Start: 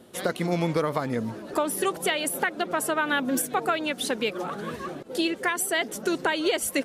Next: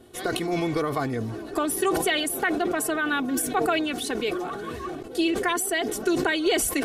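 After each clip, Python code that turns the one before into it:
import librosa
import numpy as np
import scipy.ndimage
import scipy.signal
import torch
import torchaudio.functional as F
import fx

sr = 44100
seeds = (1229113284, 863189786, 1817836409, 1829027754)

y = fx.low_shelf(x, sr, hz=110.0, db=11.5)
y = y + 0.67 * np.pad(y, (int(2.7 * sr / 1000.0), 0))[:len(y)]
y = fx.sustainer(y, sr, db_per_s=37.0)
y = y * librosa.db_to_amplitude(-3.0)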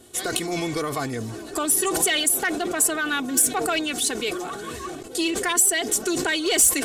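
y = fx.peak_eq(x, sr, hz=7600.0, db=8.0, octaves=0.7)
y = 10.0 ** (-15.0 / 20.0) * np.tanh(y / 10.0 ** (-15.0 / 20.0))
y = fx.high_shelf(y, sr, hz=2400.0, db=8.5)
y = y * librosa.db_to_amplitude(-1.0)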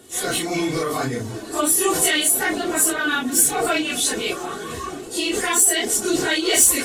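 y = fx.phase_scramble(x, sr, seeds[0], window_ms=100)
y = y * librosa.db_to_amplitude(3.0)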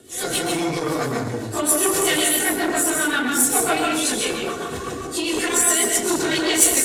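y = fx.rotary(x, sr, hz=7.5)
y = fx.rev_plate(y, sr, seeds[1], rt60_s=0.72, hf_ratio=0.6, predelay_ms=115, drr_db=1.0)
y = fx.transformer_sat(y, sr, knee_hz=2100.0)
y = y * librosa.db_to_amplitude(2.0)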